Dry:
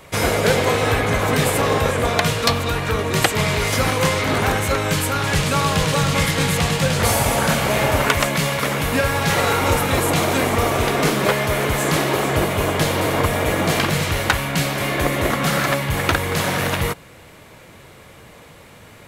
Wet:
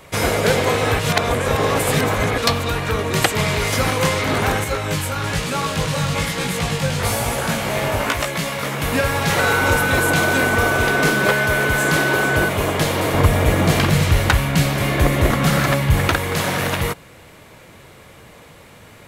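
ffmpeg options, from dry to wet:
ffmpeg -i in.wav -filter_complex "[0:a]asettb=1/sr,asplit=3[link_01][link_02][link_03];[link_01]atrim=end=4.644[link_04];[link_02]atrim=start=4.64:end=8.82,asetpts=PTS-STARTPTS,afade=type=in:duration=0.004:curve=qsin,afade=type=out:start_time=4.176:duration=0.004:curve=qsin,flanger=delay=16.5:depth=4.1:speed=1.1[link_05];[link_03]atrim=start=8.816[link_06];[link_04][link_05]acrossfade=duration=0.004:curve1=hsin:curve2=qsin[link_07];[link_07][link_06]acrossfade=duration=0.004:curve1=qsin:curve2=hsin,asettb=1/sr,asplit=3[link_08][link_09][link_10];[link_08]atrim=end=9.394[link_11];[link_09]atrim=start=9.39:end=12.49,asetpts=PTS-STARTPTS,afade=type=in:duration=0.004:curve=qsin,afade=type=out:start_time=3.096:duration=0.004:curve=qsin,aeval=exprs='val(0)+0.112*sin(2*PI*1500*n/s)':channel_layout=same[link_12];[link_10]atrim=start=12.486[link_13];[link_11][link_12]acrossfade=duration=0.004:curve1=hsin:curve2=qsin[link_14];[link_14][link_13]acrossfade=duration=0.004:curve1=qsin:curve2=hsin,asettb=1/sr,asplit=3[link_15][link_16][link_17];[link_15]atrim=end=13.144[link_18];[link_16]atrim=start=13.14:end=16.08,asetpts=PTS-STARTPTS,afade=type=in:duration=0.004:curve=qsin,afade=type=out:start_time=2.936:duration=0.004:curve=qsin,lowshelf=frequency=150:gain=11.5[link_19];[link_17]atrim=start=16.076[link_20];[link_18][link_19]acrossfade=duration=0.004:curve1=hsin:curve2=qsin[link_21];[link_21][link_20]acrossfade=duration=0.004:curve1=qsin:curve2=hsin,asplit=3[link_22][link_23][link_24];[link_22]atrim=end=0.992[link_25];[link_23]atrim=start=0.988:end=2.382,asetpts=PTS-STARTPTS,areverse[link_26];[link_24]atrim=start=2.378[link_27];[link_25][link_26]acrossfade=duration=0.004:curve1=hsin:curve2=hsin[link_28];[link_28][link_27]acrossfade=duration=0.004:curve1=hsin:curve2=hsin" out.wav

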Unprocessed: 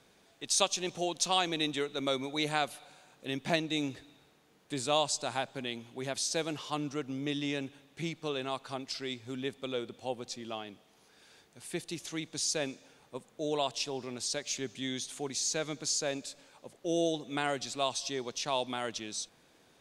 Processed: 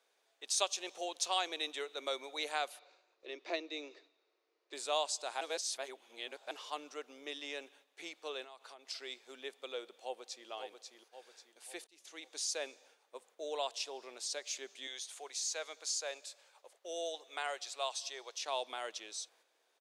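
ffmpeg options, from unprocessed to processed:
ffmpeg -i in.wav -filter_complex "[0:a]asettb=1/sr,asplit=3[link_01][link_02][link_03];[link_01]atrim=end=2.794[link_04];[link_02]atrim=start=2.79:end=4.73,asetpts=PTS-STARTPTS,afade=type=in:duration=0.004:curve=qsin,afade=type=out:start_time=1.936:duration=0.004:curve=qsin,highpass=frequency=290:width=0.5412,highpass=frequency=290:width=1.3066,equalizer=frequency=350:width_type=q:width=4:gain=9,equalizer=frequency=820:width_type=q:width=4:gain=-8,equalizer=frequency=1600:width_type=q:width=4:gain=-7,equalizer=frequency=3200:width_type=q:width=4:gain=-8,lowpass=frequency=5300:width=0.5412,lowpass=frequency=5300:width=1.3066[link_05];[link_03]atrim=start=4.726[link_06];[link_04][link_05]acrossfade=duration=0.004:curve1=hsin:curve2=qsin[link_07];[link_07][link_06]acrossfade=duration=0.004:curve1=qsin:curve2=hsin,asettb=1/sr,asplit=3[link_08][link_09][link_10];[link_08]atrim=end=8.444[link_11];[link_09]atrim=start=8.44:end=8.89,asetpts=PTS-STARTPTS,afade=type=in:duration=0.004:curve=qsin,afade=type=out:start_time=0.446:duration=0.004:curve=qsin,acompressor=threshold=-42dB:ratio=10:attack=3.2:release=140:knee=1:detection=peak[link_12];[link_10]atrim=start=8.886[link_13];[link_11][link_12]acrossfade=duration=0.004:curve1=hsin:curve2=qsin[link_14];[link_14][link_13]acrossfade=duration=0.004:curve1=qsin:curve2=hsin,asplit=2[link_15][link_16];[link_16]afade=type=in:start_time=10.03:duration=0.01,afade=type=out:start_time=10.49:duration=0.01,aecho=0:1:540|1080|1620|2160|2700:0.530884|0.238898|0.107504|0.0483768|0.0217696[link_17];[link_15][link_17]amix=inputs=2:normalize=0,asettb=1/sr,asplit=3[link_18][link_19][link_20];[link_18]atrim=end=14.874[link_21];[link_19]atrim=start=14.87:end=18.41,asetpts=PTS-STARTPTS,afade=type=in:duration=0.004:curve=qsin,afade=type=out:start_time=3.536:duration=0.004:curve=qsin,highpass=510[link_22];[link_20]atrim=start=18.406[link_23];[link_21][link_22]acrossfade=duration=0.004:curve1=hsin:curve2=qsin[link_24];[link_24][link_23]acrossfade=duration=0.004:curve1=qsin:curve2=hsin,asplit=4[link_25][link_26][link_27][link_28];[link_25]atrim=end=5.412[link_29];[link_26]atrim=start=5.408:end=6.512,asetpts=PTS-STARTPTS,areverse[link_30];[link_27]atrim=start=6.508:end=11.87,asetpts=PTS-STARTPTS,afade=type=out:start_time=5.358:duration=0.004:curve=hsin[link_31];[link_28]atrim=start=11.87,asetpts=PTS-STARTPTS,afade=type=in:duration=0.44[link_32];[link_29][link_30]acrossfade=duration=0.004:curve1=hsin:curve2=hsin[link_33];[link_31][link_32]concat=n=2:v=0:a=1[link_34];[link_33][link_34]acrossfade=duration=0.004:curve1=hsin:curve2=hsin,highpass=frequency=430:width=0.5412,highpass=frequency=430:width=1.3066,agate=range=-6dB:threshold=-60dB:ratio=16:detection=peak,volume=-5dB" out.wav

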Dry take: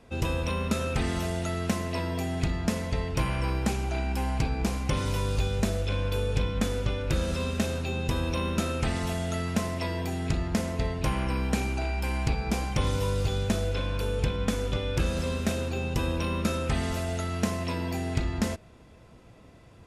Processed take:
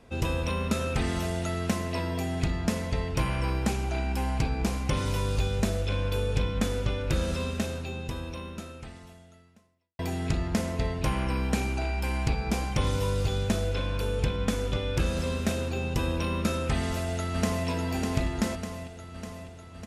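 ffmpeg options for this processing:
ffmpeg -i in.wav -filter_complex "[0:a]asplit=2[link_01][link_02];[link_02]afade=type=in:start_time=16.74:duration=0.01,afade=type=out:start_time=17.67:duration=0.01,aecho=0:1:600|1200|1800|2400|3000|3600|4200|4800|5400|6000:0.530884|0.345075|0.224299|0.145794|0.0947662|0.061598|0.0400387|0.0260252|0.0169164|0.0109956[link_03];[link_01][link_03]amix=inputs=2:normalize=0,asplit=2[link_04][link_05];[link_04]atrim=end=9.99,asetpts=PTS-STARTPTS,afade=type=out:start_time=7.27:duration=2.72:curve=qua[link_06];[link_05]atrim=start=9.99,asetpts=PTS-STARTPTS,afade=type=in:duration=0.004:curve=hsin[link_07];[link_06][link_07]concat=n=2:v=0:a=1" out.wav

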